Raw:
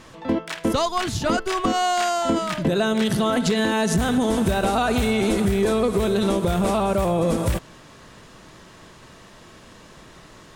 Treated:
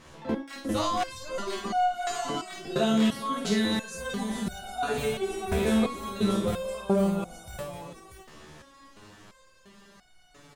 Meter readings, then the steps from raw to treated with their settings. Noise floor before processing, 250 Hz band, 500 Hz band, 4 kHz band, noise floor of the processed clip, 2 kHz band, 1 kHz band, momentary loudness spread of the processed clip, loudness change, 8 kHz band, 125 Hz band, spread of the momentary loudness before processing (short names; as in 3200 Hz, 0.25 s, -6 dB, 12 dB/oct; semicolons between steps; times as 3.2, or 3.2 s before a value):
-47 dBFS, -6.0 dB, -8.0 dB, -6.5 dB, -57 dBFS, -8.0 dB, -6.5 dB, 10 LU, -7.0 dB, -8.0 dB, -9.0 dB, 4 LU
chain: tapped delay 51/261/453/639 ms -4/-14/-19.5/-8.5 dB; stepped resonator 2.9 Hz 75–730 Hz; gain +3 dB